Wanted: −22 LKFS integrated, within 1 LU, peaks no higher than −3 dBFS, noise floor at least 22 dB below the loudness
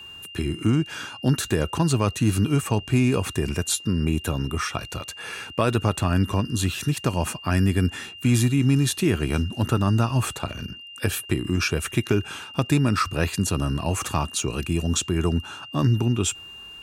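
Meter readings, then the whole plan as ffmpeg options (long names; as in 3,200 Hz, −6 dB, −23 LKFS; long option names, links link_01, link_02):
interfering tone 2,800 Hz; level of the tone −39 dBFS; integrated loudness −24.0 LKFS; sample peak −8.0 dBFS; target loudness −22.0 LKFS
→ -af "bandreject=frequency=2800:width=30"
-af "volume=2dB"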